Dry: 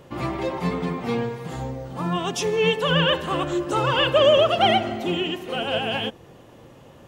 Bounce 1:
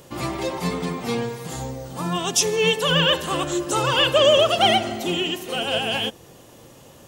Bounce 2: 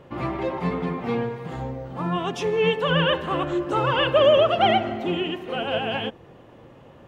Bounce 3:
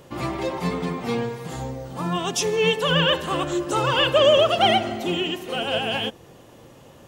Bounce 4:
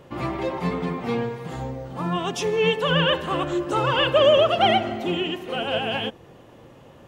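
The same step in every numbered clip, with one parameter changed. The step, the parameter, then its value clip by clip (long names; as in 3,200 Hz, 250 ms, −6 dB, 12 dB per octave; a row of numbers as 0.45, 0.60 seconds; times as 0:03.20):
bass and treble, treble: +14, −13, +6, −4 decibels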